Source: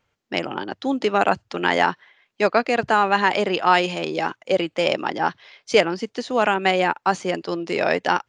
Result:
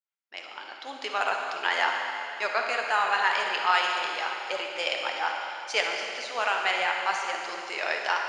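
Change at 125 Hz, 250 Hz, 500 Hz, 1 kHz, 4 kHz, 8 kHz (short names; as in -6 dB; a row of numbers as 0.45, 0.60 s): under -30 dB, -23.0 dB, -13.0 dB, -6.0 dB, -2.0 dB, -2.0 dB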